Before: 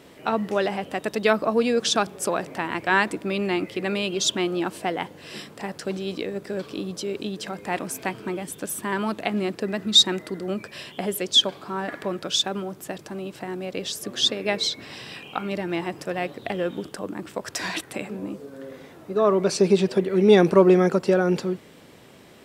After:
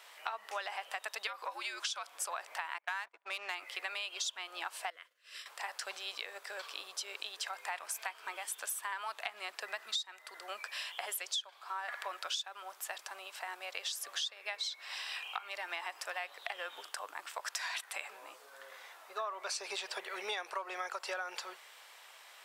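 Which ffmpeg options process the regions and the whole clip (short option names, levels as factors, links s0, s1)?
-filter_complex "[0:a]asettb=1/sr,asplit=3[s0][s1][s2];[s0]atrim=end=1.274[s3];[s1]atrim=start=1.27:end=2.19,asetpts=PTS-STARTPTS,afade=t=in:d=0.004:c=qsin,afade=t=out:st=0.916:d=0.004:c=qsin,acompressor=threshold=0.1:ratio=4:attack=3.2:release=140:knee=1:detection=peak,afreqshift=-110[s4];[s2]atrim=start=2.186[s5];[s3][s4]acrossfade=d=0.004:c1=hsin:c2=qsin[s6];[s6][s5]acrossfade=d=0.004:c1=qsin:c2=hsin,asettb=1/sr,asplit=3[s7][s8][s9];[s7]atrim=end=2.784[s10];[s8]atrim=start=2.78:end=3.55,asetpts=PTS-STARTPTS,afade=t=in:d=0.004:c=qsin,afade=t=out:st=0.766:d=0.004:c=qsin,agate=range=0.0631:threshold=0.0355:ratio=16:release=100:detection=peak,adynamicsmooth=sensitivity=5:basefreq=2800[s11];[s9]atrim=start=3.546[s12];[s10][s11]acrossfade=d=0.004:c1=hsin:c2=qsin[s13];[s13][s12]acrossfade=d=0.004:c1=qsin:c2=hsin,asettb=1/sr,asplit=3[s14][s15][s16];[s14]atrim=end=4.904[s17];[s15]atrim=start=4.9:end=5.46,asetpts=PTS-STARTPTS,afade=t=in:d=0.004:c=qsin,afade=t=out:st=0.556:d=0.004:c=qsin,asuperstop=centerf=840:order=4:qfactor=1.7,acompressor=threshold=0.0251:ratio=8:attack=3.2:release=140:knee=1:detection=peak,agate=range=0.0224:threshold=0.0224:ratio=3:release=100:detection=peak[s18];[s16]atrim=start=5.456[s19];[s17][s18]acrossfade=d=0.004:c1=hsin:c2=qsin[s20];[s20][s19]acrossfade=d=0.004:c1=qsin:c2=hsin,highpass=f=830:w=0.5412,highpass=f=830:w=1.3066,acompressor=threshold=0.02:ratio=12,volume=0.891"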